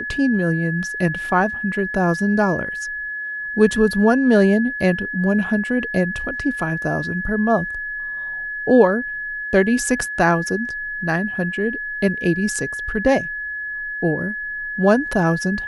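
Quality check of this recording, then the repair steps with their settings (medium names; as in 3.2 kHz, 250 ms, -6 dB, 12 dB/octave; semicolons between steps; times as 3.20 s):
whine 1.7 kHz -25 dBFS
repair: band-stop 1.7 kHz, Q 30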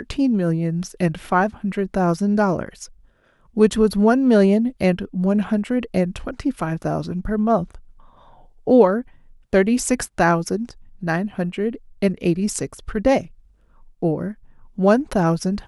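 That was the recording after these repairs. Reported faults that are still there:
nothing left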